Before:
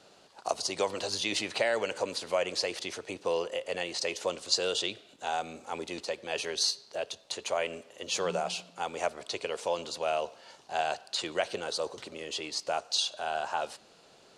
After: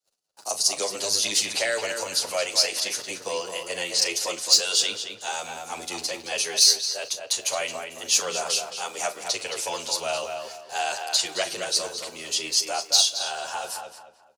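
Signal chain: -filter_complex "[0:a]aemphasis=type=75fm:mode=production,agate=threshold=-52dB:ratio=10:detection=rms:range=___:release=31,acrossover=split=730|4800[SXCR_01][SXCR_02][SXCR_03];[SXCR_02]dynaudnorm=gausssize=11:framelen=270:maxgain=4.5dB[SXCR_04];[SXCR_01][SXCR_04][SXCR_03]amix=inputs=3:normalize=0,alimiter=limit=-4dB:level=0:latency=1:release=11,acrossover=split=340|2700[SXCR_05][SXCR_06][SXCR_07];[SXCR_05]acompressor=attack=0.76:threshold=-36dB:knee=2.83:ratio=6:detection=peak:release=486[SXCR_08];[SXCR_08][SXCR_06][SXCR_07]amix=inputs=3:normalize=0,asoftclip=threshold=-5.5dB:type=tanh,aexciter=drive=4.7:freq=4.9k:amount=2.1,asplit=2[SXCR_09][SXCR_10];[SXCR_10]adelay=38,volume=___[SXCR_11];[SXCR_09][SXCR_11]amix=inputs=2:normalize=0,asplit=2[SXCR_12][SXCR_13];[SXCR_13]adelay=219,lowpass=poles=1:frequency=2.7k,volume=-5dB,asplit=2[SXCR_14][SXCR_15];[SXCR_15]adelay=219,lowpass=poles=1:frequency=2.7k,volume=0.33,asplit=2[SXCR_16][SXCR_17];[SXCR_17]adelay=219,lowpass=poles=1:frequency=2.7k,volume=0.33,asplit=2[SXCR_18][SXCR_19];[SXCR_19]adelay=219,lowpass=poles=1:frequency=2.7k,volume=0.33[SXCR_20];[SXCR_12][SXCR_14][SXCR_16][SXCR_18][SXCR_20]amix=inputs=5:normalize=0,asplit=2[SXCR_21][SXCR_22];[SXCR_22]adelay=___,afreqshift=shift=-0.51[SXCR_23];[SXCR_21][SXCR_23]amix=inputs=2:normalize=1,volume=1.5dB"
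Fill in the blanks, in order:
-35dB, -13dB, 8.8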